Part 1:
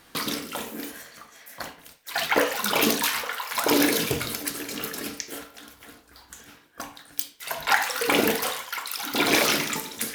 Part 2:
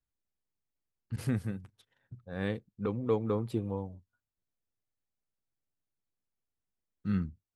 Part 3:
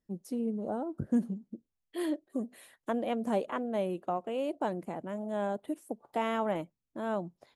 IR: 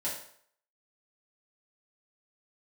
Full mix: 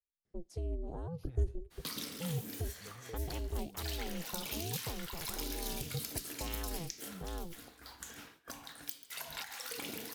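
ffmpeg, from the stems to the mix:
-filter_complex "[0:a]agate=range=0.0224:threshold=0.00251:ratio=3:detection=peak,alimiter=limit=0.251:level=0:latency=1:release=482,adelay=1700,volume=0.841,asplit=2[s0][s1];[s1]volume=0.0944[s2];[1:a]asplit=2[s3][s4];[s4]afreqshift=-0.6[s5];[s3][s5]amix=inputs=2:normalize=1,volume=0.188[s6];[2:a]lowpass=6300,aeval=exprs='val(0)*sin(2*PI*170*n/s)':c=same,adelay=250,volume=1.33[s7];[s0][s6]amix=inputs=2:normalize=0,acompressor=threshold=0.00794:ratio=2,volume=1[s8];[s2]aecho=0:1:137:1[s9];[s7][s8][s9]amix=inputs=3:normalize=0,acrossover=split=220|3000[s10][s11][s12];[s11]acompressor=threshold=0.00398:ratio=4[s13];[s10][s13][s12]amix=inputs=3:normalize=0"

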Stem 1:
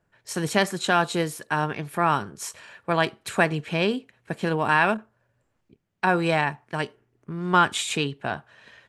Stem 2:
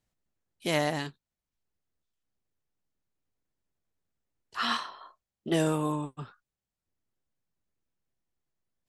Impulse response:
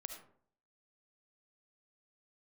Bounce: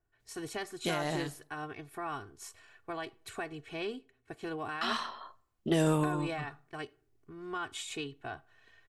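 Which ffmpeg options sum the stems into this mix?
-filter_complex "[0:a]aecho=1:1:2.7:0.77,alimiter=limit=0.237:level=0:latency=1:release=191,volume=0.168,asplit=3[s0][s1][s2];[s1]volume=0.112[s3];[1:a]alimiter=limit=0.112:level=0:latency=1:release=174,adelay=200,volume=1.06,asplit=3[s4][s5][s6];[s4]atrim=end=4.01,asetpts=PTS-STARTPTS,afade=t=out:st=4.006:d=0.004:c=hsin[s7];[s5]atrim=start=4.01:end=4.81,asetpts=PTS-STARTPTS,volume=0[s8];[s6]atrim=start=4.81,asetpts=PTS-STARTPTS,afade=t=in:d=0.004:c=hsin[s9];[s7][s8][s9]concat=n=3:v=0:a=1,asplit=2[s10][s11];[s11]volume=0.211[s12];[s2]apad=whole_len=400555[s13];[s10][s13]sidechaincompress=threshold=0.00794:ratio=4:attack=20:release=202[s14];[2:a]atrim=start_sample=2205[s15];[s3][s12]amix=inputs=2:normalize=0[s16];[s16][s15]afir=irnorm=-1:irlink=0[s17];[s0][s14][s17]amix=inputs=3:normalize=0,lowshelf=f=79:g=11"

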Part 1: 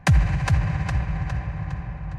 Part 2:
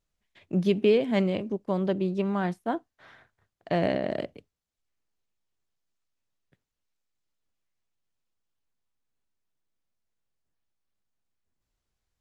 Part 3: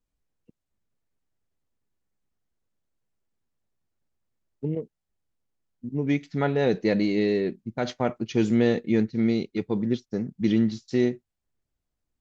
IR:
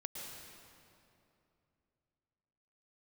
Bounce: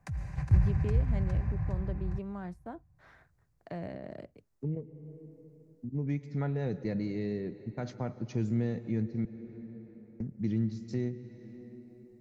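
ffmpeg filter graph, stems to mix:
-filter_complex "[0:a]volume=0.794,asplit=2[s0][s1];[s1]volume=0.112[s2];[1:a]volume=0.596,asplit=2[s3][s4];[2:a]volume=1.06,asplit=3[s5][s6][s7];[s5]atrim=end=9.25,asetpts=PTS-STARTPTS,afade=t=out:st=9.246:d=0.004:c=hsin[s8];[s6]atrim=start=9.25:end=10.2,asetpts=PTS-STARTPTS,volume=0[s9];[s7]atrim=start=10.2,asetpts=PTS-STARTPTS,afade=t=in:d=0.004:c=hsin[s10];[s8][s9][s10]concat=n=3:v=0:a=1,asplit=2[s11][s12];[s12]volume=0.282[s13];[s4]apad=whole_len=96463[s14];[s0][s14]sidechaingate=range=0.0794:threshold=0.001:ratio=16:detection=peak[s15];[3:a]atrim=start_sample=2205[s16];[s2][s13]amix=inputs=2:normalize=0[s17];[s17][s16]afir=irnorm=-1:irlink=0[s18];[s15][s3][s11][s18]amix=inputs=4:normalize=0,equalizer=f=3200:w=2.4:g=-9.5,acrossover=split=140[s19][s20];[s20]acompressor=threshold=0.00398:ratio=2[s21];[s19][s21]amix=inputs=2:normalize=0"

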